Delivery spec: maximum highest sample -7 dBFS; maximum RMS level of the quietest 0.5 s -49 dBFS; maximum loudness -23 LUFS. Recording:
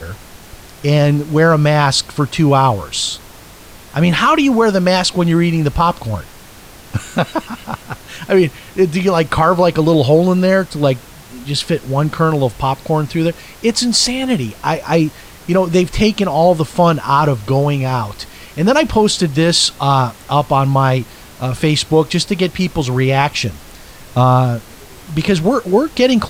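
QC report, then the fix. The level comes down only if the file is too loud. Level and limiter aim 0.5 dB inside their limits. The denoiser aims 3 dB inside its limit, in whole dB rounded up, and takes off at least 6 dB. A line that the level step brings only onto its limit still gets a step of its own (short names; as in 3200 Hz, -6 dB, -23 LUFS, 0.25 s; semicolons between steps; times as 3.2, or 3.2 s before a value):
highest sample -2.0 dBFS: fail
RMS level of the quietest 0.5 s -38 dBFS: fail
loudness -14.5 LUFS: fail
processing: denoiser 6 dB, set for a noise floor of -38 dBFS; gain -9 dB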